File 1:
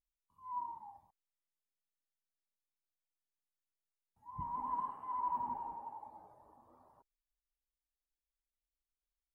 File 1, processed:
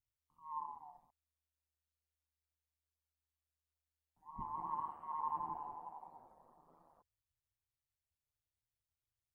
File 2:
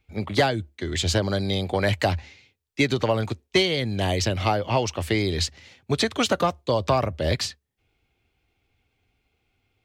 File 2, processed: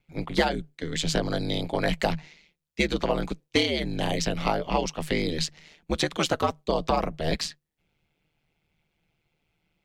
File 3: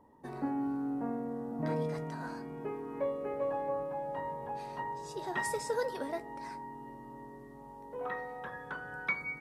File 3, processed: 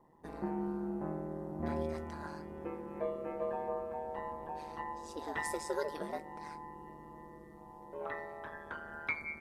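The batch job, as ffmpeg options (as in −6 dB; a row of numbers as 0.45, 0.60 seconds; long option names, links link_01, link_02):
-af "aeval=exprs='val(0)*sin(2*PI*77*n/s)':channel_layout=same"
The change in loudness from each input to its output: −3.0, −3.0, −3.0 LU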